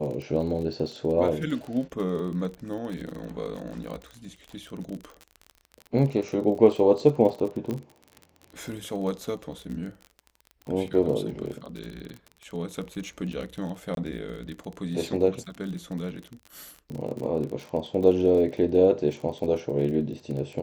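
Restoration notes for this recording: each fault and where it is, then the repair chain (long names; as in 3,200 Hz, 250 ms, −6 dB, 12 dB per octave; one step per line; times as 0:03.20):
surface crackle 33 per second −33 dBFS
0:07.71: click −19 dBFS
0:13.95–0:13.97: drop-out 22 ms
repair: click removal
repair the gap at 0:13.95, 22 ms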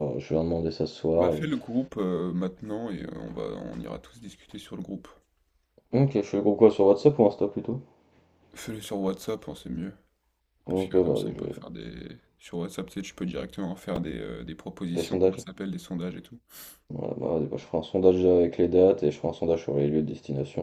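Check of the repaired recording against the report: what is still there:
none of them is left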